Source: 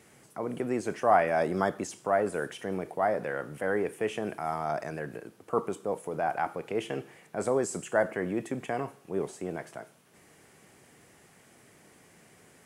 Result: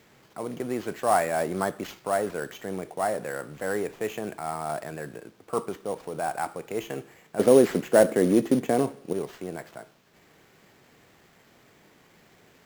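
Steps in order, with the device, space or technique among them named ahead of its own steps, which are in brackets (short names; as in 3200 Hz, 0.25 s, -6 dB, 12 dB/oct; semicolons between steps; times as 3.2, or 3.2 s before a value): 7.39–9.13 graphic EQ 125/250/500/4000 Hz +4/+11/+9/+3 dB; early companding sampler (sample-rate reducer 9500 Hz, jitter 0%; companded quantiser 6-bit)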